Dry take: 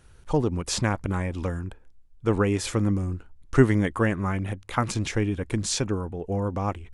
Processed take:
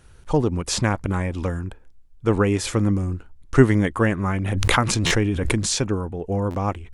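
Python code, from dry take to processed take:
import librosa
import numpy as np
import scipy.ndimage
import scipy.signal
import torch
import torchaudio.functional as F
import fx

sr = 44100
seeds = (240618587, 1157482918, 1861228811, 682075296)

y = fx.buffer_glitch(x, sr, at_s=(5.06, 6.5), block=512, repeats=3)
y = fx.pre_swell(y, sr, db_per_s=23.0, at=(4.29, 5.73))
y = y * 10.0 ** (3.5 / 20.0)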